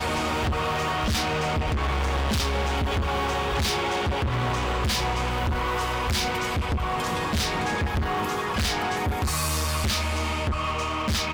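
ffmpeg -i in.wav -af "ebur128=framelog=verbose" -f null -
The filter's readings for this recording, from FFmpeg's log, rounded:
Integrated loudness:
  I:         -25.7 LUFS
  Threshold: -35.7 LUFS
Loudness range:
  LRA:         0.7 LU
  Threshold: -45.7 LUFS
  LRA low:   -26.0 LUFS
  LRA high:  -25.3 LUFS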